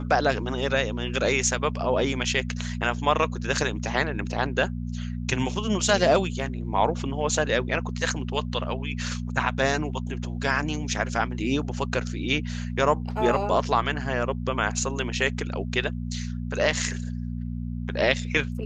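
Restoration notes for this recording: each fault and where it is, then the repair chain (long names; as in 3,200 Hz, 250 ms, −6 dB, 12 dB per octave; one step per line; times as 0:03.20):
mains hum 60 Hz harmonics 4 −31 dBFS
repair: hum removal 60 Hz, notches 4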